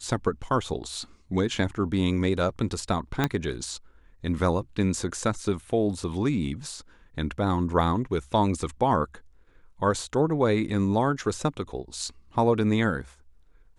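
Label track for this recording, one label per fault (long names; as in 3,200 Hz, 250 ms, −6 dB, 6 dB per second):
3.240000	3.240000	click −9 dBFS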